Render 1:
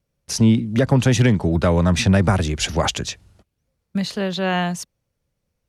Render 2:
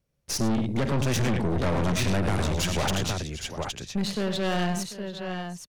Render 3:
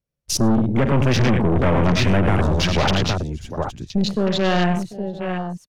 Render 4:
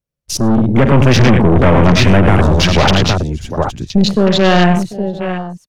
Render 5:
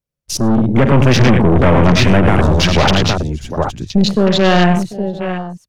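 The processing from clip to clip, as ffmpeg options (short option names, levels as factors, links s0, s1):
-af "aecho=1:1:51|95|109|742|814:0.15|0.282|0.237|0.126|0.335,aeval=exprs='(tanh(14.1*val(0)+0.55)-tanh(0.55))/14.1':c=same"
-af "afwtdn=0.0158,volume=2.51"
-af "dynaudnorm=f=150:g=7:m=3.76"
-af "bandreject=f=50:t=h:w=6,bandreject=f=100:t=h:w=6,volume=0.891"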